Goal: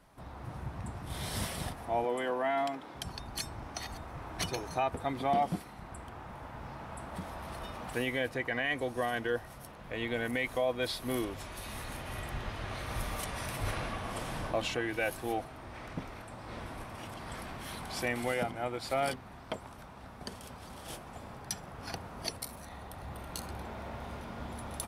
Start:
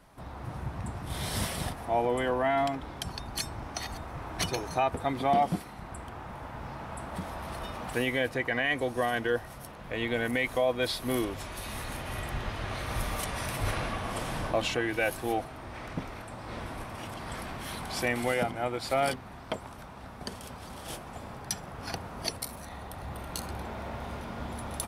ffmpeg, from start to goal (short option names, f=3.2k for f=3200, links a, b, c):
-filter_complex "[0:a]asettb=1/sr,asplit=3[a][b][c];[a]atrim=end=2.044[d];[b]atrim=start=2.04:end=2.95,asetpts=PTS-STARTPTS,afade=t=in:d=0.004:c=qsin,afade=t=out:st=0.906:d=0.004:c=qsin,highpass=230[e];[c]atrim=start=2.946[f];[d][e]acrossfade=d=0.004:c1=hsin:c2=qsin[g];[g][f]acrossfade=d=0.004:c1=qsin:c2=hsin,volume=-4dB"